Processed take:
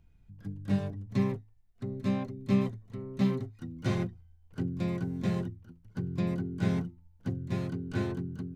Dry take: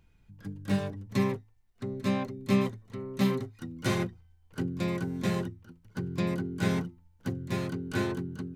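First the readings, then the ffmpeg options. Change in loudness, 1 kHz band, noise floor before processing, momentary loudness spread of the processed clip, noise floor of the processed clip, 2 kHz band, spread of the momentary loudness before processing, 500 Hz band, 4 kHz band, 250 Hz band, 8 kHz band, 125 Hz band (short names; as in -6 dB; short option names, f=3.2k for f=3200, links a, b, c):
-1.0 dB, -5.5 dB, -63 dBFS, 12 LU, -61 dBFS, -7.0 dB, 12 LU, -3.5 dB, -7.0 dB, -1.0 dB, n/a, +0.5 dB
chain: -filter_complex "[0:a]lowshelf=f=270:g=10,acrossover=split=7300[a][b];[b]acompressor=threshold=-58dB:ratio=4:attack=1:release=60[c];[a][c]amix=inputs=2:normalize=0,equalizer=f=690:t=o:w=0.22:g=5,volume=-7dB"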